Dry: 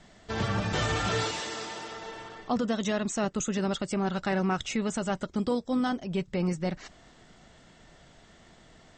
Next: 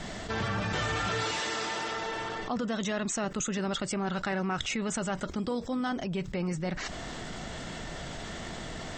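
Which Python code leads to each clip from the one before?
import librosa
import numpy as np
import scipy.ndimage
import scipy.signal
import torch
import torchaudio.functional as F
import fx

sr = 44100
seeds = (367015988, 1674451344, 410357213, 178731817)

y = fx.dynamic_eq(x, sr, hz=1700.0, q=0.75, threshold_db=-44.0, ratio=4.0, max_db=4)
y = fx.env_flatten(y, sr, amount_pct=70)
y = F.gain(torch.from_numpy(y), -6.0).numpy()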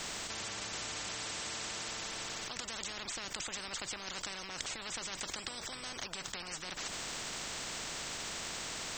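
y = fx.spectral_comp(x, sr, ratio=10.0)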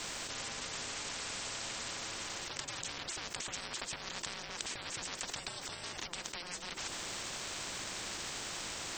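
y = x * np.sin(2.0 * np.pi * 350.0 * np.arange(len(x)) / sr)
y = F.gain(torch.from_numpy(y), 2.5).numpy()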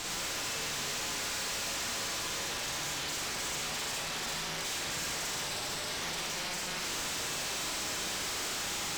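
y = fx.rev_schroeder(x, sr, rt60_s=1.1, comb_ms=38, drr_db=-4.0)
y = fx.tube_stage(y, sr, drive_db=41.0, bias=0.6)
y = F.gain(torch.from_numpy(y), 8.0).numpy()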